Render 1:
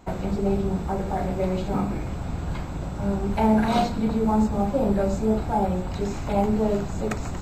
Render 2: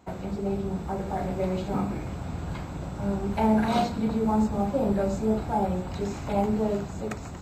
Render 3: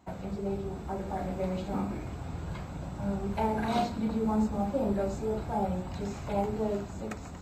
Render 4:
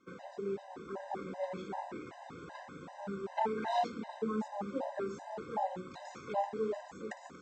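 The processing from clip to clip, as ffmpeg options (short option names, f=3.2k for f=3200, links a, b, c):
-af "dynaudnorm=f=200:g=9:m=3dB,highpass=59,volume=-5.5dB"
-af "flanger=delay=1:depth=3.2:regen=-69:speed=0.34:shape=triangular"
-af "highpass=340,equalizer=f=620:t=q:w=4:g=-4,equalizer=f=1.8k:t=q:w=4:g=3,equalizer=f=2.6k:t=q:w=4:g=-5,equalizer=f=4.3k:t=q:w=4:g=-6,lowpass=f=6.3k:w=0.5412,lowpass=f=6.3k:w=1.3066,afftfilt=real='re*gt(sin(2*PI*2.6*pts/sr)*(1-2*mod(floor(b*sr/1024/520),2)),0)':imag='im*gt(sin(2*PI*2.6*pts/sr)*(1-2*mod(floor(b*sr/1024/520),2)),0)':win_size=1024:overlap=0.75,volume=1dB"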